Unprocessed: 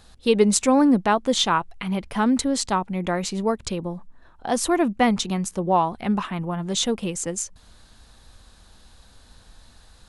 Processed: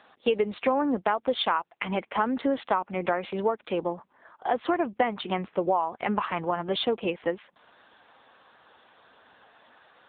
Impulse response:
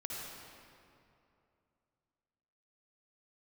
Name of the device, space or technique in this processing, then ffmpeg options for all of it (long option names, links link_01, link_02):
voicemail: -filter_complex "[0:a]asplit=3[link_01][link_02][link_03];[link_01]afade=type=out:start_time=6.36:duration=0.02[link_04];[link_02]highshelf=frequency=2100:gain=2,afade=type=in:start_time=6.36:duration=0.02,afade=type=out:start_time=6.96:duration=0.02[link_05];[link_03]afade=type=in:start_time=6.96:duration=0.02[link_06];[link_04][link_05][link_06]amix=inputs=3:normalize=0,highpass=430,lowpass=2800,acompressor=threshold=-28dB:ratio=8,volume=7.5dB" -ar 8000 -c:a libopencore_amrnb -b:a 6700